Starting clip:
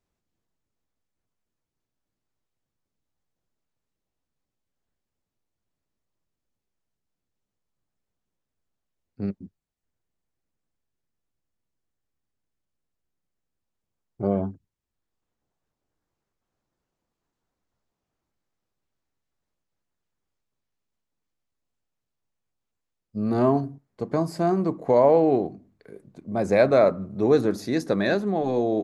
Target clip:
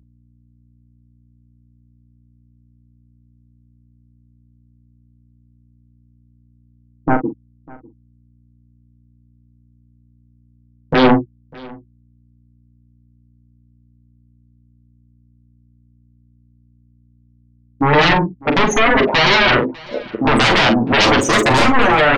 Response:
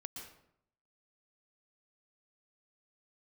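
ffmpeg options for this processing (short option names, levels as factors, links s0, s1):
-filter_complex "[0:a]afftfilt=real='re*gte(hypot(re,im),0.0178)':imag='im*gte(hypot(re,im),0.0178)':win_size=1024:overlap=0.75,agate=range=0.501:threshold=0.00631:ratio=16:detection=peak,acrossover=split=520[s0][s1];[s0]bandpass=f=280:t=q:w=0.58:csg=0[s2];[s1]acompressor=threshold=0.0178:ratio=12[s3];[s2][s3]amix=inputs=2:normalize=0,asetrate=57330,aresample=44100,aeval=exprs='0.266*sin(PI/2*7.94*val(0)/0.266)':c=same,flanger=delay=5.1:depth=4.4:regen=10:speed=0.12:shape=triangular,aeval=exprs='val(0)+0.00158*(sin(2*PI*60*n/s)+sin(2*PI*2*60*n/s)/2+sin(2*PI*3*60*n/s)/3+sin(2*PI*4*60*n/s)/4+sin(2*PI*5*60*n/s)/5)':c=same,asplit=2[s4][s5];[s5]adelay=42,volume=0.376[s6];[s4][s6]amix=inputs=2:normalize=0,asplit=2[s7][s8];[s8]aecho=0:1:599:0.0668[s9];[s7][s9]amix=inputs=2:normalize=0,volume=1.78"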